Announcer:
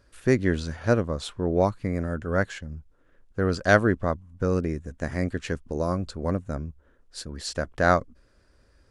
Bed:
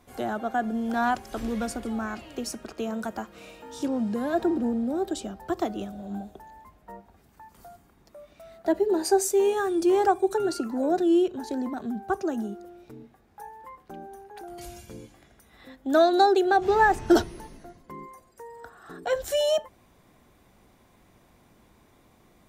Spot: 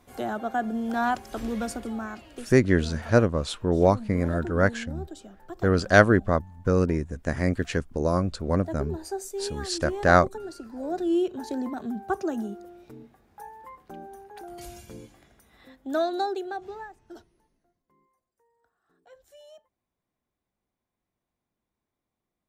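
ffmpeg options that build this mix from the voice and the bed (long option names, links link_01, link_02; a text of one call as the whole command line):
ffmpeg -i stem1.wav -i stem2.wav -filter_complex "[0:a]adelay=2250,volume=2.5dB[link_01];[1:a]volume=10.5dB,afade=type=out:start_time=1.72:duration=0.94:silence=0.281838,afade=type=in:start_time=10.67:duration=0.74:silence=0.281838,afade=type=out:start_time=15.02:duration=1.9:silence=0.0473151[link_02];[link_01][link_02]amix=inputs=2:normalize=0" out.wav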